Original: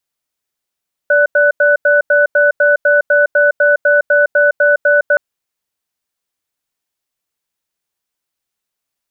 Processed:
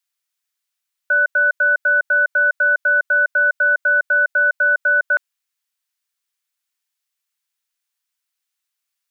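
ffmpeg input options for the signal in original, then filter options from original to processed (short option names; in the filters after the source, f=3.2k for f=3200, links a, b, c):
-f lavfi -i "aevalsrc='0.316*(sin(2*PI*583*t)+sin(2*PI*1490*t))*clip(min(mod(t,0.25),0.16-mod(t,0.25))/0.005,0,1)':d=4.07:s=44100"
-af "highpass=1.3k"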